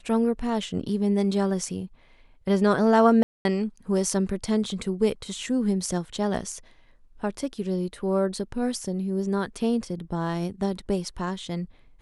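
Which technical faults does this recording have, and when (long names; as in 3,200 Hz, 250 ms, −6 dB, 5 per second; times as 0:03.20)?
0:03.23–0:03.45: drop-out 221 ms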